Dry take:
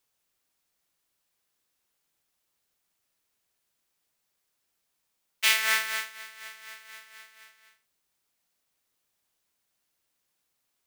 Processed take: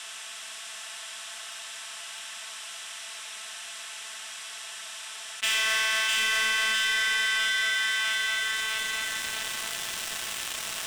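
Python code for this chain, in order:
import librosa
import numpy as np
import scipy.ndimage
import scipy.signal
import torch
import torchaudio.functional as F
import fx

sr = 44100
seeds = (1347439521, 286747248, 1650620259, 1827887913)

p1 = fx.bin_compress(x, sr, power=0.6)
p2 = fx.peak_eq(p1, sr, hz=390.0, db=-15.0, octaves=2.9)
p3 = fx.notch(p2, sr, hz=960.0, q=11.0)
p4 = p3 + fx.echo_feedback(p3, sr, ms=652, feedback_pct=37, wet_db=-4, dry=0)
p5 = fx.rider(p4, sr, range_db=5, speed_s=2.0)
p6 = fx.cabinet(p5, sr, low_hz=220.0, low_slope=12, high_hz=8000.0, hz=(350.0, 680.0, 1000.0, 2200.0, 4500.0, 6500.0), db=(-4, 8, 5, -7, -10, -7))
p7 = p6 + 10.0 ** (-5.0 / 20.0) * np.pad(p6, (int(89 * sr / 1000.0), 0))[:len(p6)]
p8 = fx.leveller(p7, sr, passes=3)
p9 = fx.env_flatten(p8, sr, amount_pct=70)
y = p9 * librosa.db_to_amplitude(-2.0)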